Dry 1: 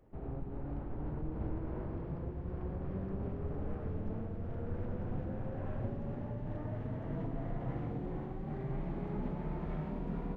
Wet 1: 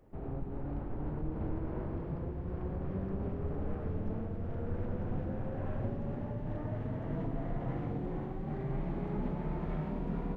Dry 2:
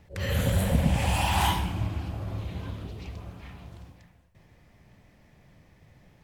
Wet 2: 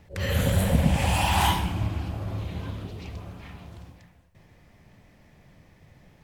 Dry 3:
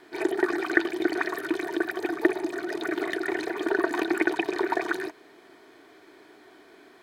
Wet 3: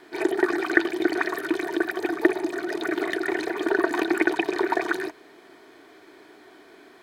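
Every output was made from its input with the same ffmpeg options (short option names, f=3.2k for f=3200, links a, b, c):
-af "bandreject=f=60:t=h:w=6,bandreject=f=120:t=h:w=6,volume=2.5dB"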